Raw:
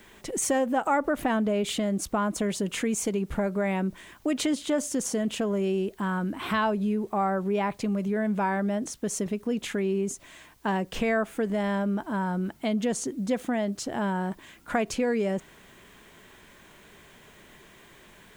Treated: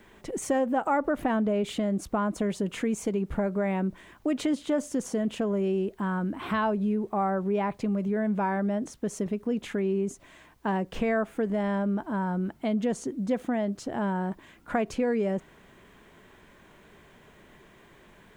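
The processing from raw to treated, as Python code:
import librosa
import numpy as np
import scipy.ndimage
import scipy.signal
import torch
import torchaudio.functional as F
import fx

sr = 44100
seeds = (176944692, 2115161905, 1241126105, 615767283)

y = fx.high_shelf(x, sr, hz=2500.0, db=-10.0)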